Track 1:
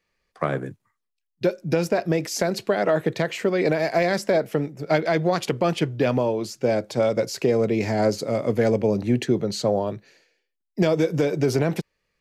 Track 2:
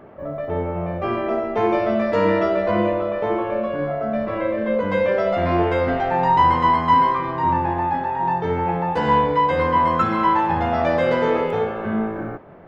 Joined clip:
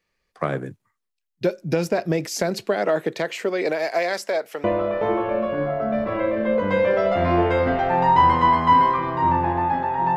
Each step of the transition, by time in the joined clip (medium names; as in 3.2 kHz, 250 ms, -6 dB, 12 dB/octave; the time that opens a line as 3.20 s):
track 1
2.66–4.64 s: high-pass 180 Hz -> 710 Hz
4.64 s: go over to track 2 from 2.85 s